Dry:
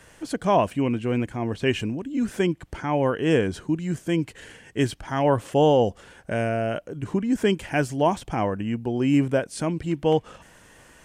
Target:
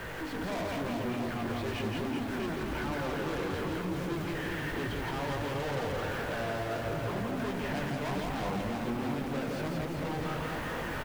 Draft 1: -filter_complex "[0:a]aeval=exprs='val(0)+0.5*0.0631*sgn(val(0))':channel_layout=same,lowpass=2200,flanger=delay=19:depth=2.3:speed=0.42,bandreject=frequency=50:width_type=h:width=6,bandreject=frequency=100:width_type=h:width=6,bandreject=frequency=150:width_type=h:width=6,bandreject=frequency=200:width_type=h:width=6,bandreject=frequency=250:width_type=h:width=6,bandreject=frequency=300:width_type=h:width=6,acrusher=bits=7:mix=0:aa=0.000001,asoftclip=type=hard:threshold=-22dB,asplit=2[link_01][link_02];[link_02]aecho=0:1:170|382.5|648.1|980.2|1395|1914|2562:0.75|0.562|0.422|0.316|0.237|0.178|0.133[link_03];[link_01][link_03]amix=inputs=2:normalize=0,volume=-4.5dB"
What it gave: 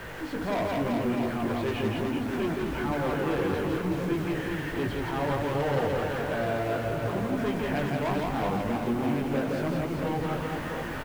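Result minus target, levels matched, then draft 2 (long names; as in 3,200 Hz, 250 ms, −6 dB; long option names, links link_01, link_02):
hard clipping: distortion −6 dB
-filter_complex "[0:a]aeval=exprs='val(0)+0.5*0.0631*sgn(val(0))':channel_layout=same,lowpass=2200,flanger=delay=19:depth=2.3:speed=0.42,bandreject=frequency=50:width_type=h:width=6,bandreject=frequency=100:width_type=h:width=6,bandreject=frequency=150:width_type=h:width=6,bandreject=frequency=200:width_type=h:width=6,bandreject=frequency=250:width_type=h:width=6,bandreject=frequency=300:width_type=h:width=6,acrusher=bits=7:mix=0:aa=0.000001,asoftclip=type=hard:threshold=-30.5dB,asplit=2[link_01][link_02];[link_02]aecho=0:1:170|382.5|648.1|980.2|1395|1914|2562:0.75|0.562|0.422|0.316|0.237|0.178|0.133[link_03];[link_01][link_03]amix=inputs=2:normalize=0,volume=-4.5dB"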